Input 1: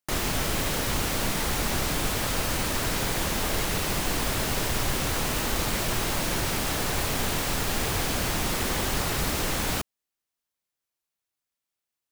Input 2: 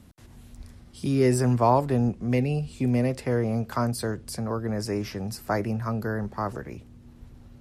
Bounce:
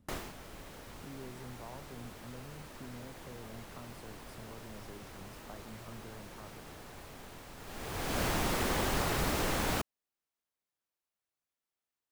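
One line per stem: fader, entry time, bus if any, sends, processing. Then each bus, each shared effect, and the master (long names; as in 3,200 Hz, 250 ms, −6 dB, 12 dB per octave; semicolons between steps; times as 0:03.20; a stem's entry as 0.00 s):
−0.5 dB, 0.00 s, no send, low-shelf EQ 240 Hz −5 dB; automatic ducking −18 dB, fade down 0.35 s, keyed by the second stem
−13.5 dB, 0.00 s, no send, downward compressor 2.5 to 1, threshold −38 dBFS, peak gain reduction 15.5 dB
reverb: not used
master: high-shelf EQ 2,000 Hz −8 dB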